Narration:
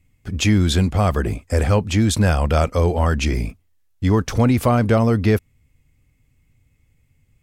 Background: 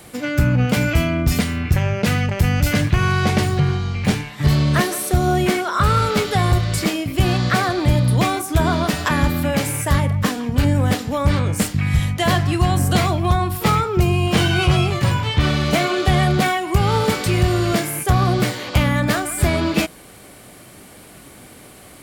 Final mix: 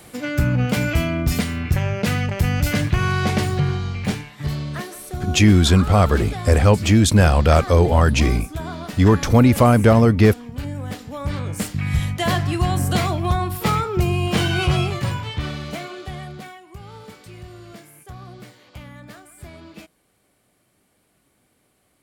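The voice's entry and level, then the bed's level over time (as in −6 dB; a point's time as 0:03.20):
4.95 s, +3.0 dB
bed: 0:03.87 −2.5 dB
0:04.78 −12.5 dB
0:10.86 −12.5 dB
0:11.95 −3 dB
0:14.81 −3 dB
0:16.69 −22.5 dB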